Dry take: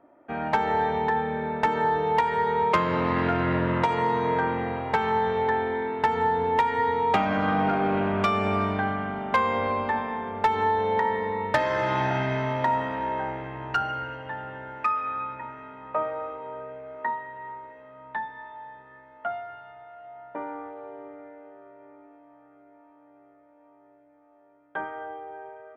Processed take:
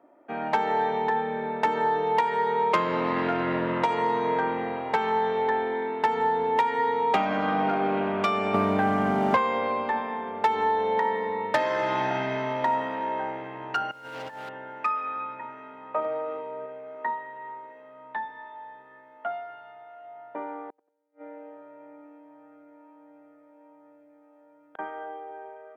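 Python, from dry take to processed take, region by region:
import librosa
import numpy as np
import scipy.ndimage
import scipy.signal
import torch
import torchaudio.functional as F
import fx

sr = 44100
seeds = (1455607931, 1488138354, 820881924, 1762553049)

y = fx.chain(x, sr, fx.tilt_eq(slope=-2.0),
    fx.leveller(passes=1),
    fx.band_squash(depth_pct=100), at=(8.54, 9.37))
y = fx.chain(y, sr, fx.law_mismatch(coded='mu'),
    fx.over_compress(threshold_db=-36.0, ratio=-0.5),
    fx.clip_hard(threshold_db=-33.0), at=(13.91, 14.49))
y = fx.chain(y, sr, fx.peak_eq(hz=1100.0, db=-5.0, octaves=1.2),
    fx.doubler(ms=45.0, db=-5.0),
    fx.transient(attack_db=0, sustain_db=9), at=(16.0, 16.66))
y = fx.chain(y, sr, fx.comb(ms=6.4, depth=0.81),
    fx.gate_flip(shuts_db=-31.0, range_db=-39),
    fx.echo_feedback(ms=92, feedback_pct=36, wet_db=-23.0), at=(20.69, 24.79))
y = scipy.signal.sosfilt(scipy.signal.butter(2, 220.0, 'highpass', fs=sr, output='sos'), y)
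y = fx.peak_eq(y, sr, hz=1500.0, db=-2.5, octaves=0.77)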